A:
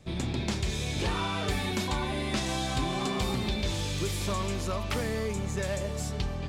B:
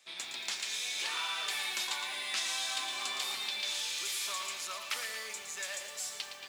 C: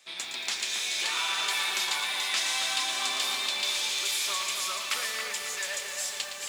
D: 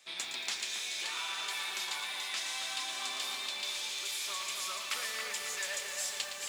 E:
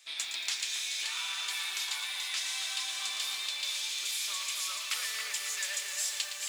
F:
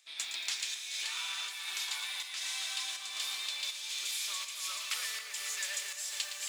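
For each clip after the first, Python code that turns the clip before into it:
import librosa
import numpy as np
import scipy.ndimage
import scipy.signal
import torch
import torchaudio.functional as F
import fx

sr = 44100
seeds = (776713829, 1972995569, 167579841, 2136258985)

y1 = scipy.signal.sosfilt(scipy.signal.bessel(2, 2000.0, 'highpass', norm='mag', fs=sr, output='sos'), x)
y1 = fx.echo_crushed(y1, sr, ms=114, feedback_pct=55, bits=9, wet_db=-8)
y1 = y1 * 10.0 ** (2.0 / 20.0)
y2 = fx.echo_split(y1, sr, split_hz=2900.0, low_ms=274, high_ms=431, feedback_pct=52, wet_db=-5.0)
y2 = y2 * 10.0 ** (5.0 / 20.0)
y3 = fx.rider(y2, sr, range_db=5, speed_s=0.5)
y3 = y3 * 10.0 ** (-7.0 / 20.0)
y4 = fx.tilt_shelf(y3, sr, db=-8.0, hz=970.0)
y4 = y4 * 10.0 ** (-4.0 / 20.0)
y5 = fx.volume_shaper(y4, sr, bpm=81, per_beat=1, depth_db=-6, release_ms=193.0, shape='slow start')
y5 = y5 * 10.0 ** (-2.0 / 20.0)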